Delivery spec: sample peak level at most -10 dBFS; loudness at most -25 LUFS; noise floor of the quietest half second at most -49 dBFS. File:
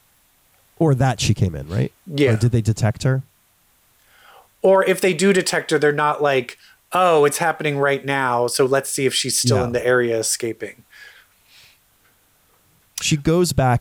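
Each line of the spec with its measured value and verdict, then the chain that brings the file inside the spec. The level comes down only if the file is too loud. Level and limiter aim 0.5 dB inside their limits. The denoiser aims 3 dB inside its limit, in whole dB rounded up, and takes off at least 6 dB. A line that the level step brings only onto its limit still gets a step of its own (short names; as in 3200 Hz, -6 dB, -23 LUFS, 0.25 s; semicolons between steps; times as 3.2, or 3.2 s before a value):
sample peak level -6.0 dBFS: fail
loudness -18.5 LUFS: fail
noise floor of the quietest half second -59 dBFS: OK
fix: gain -7 dB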